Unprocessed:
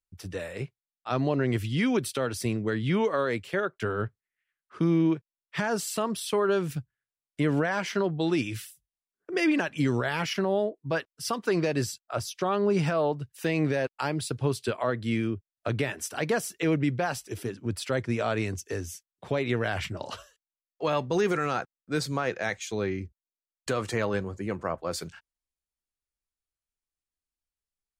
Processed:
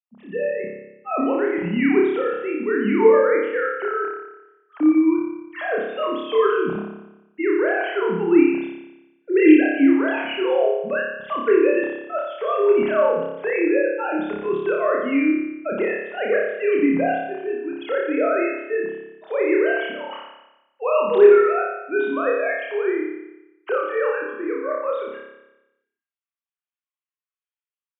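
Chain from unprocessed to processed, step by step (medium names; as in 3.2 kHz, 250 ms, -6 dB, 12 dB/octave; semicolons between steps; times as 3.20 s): formants replaced by sine waves; flutter echo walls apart 5 m, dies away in 0.95 s; trim +4 dB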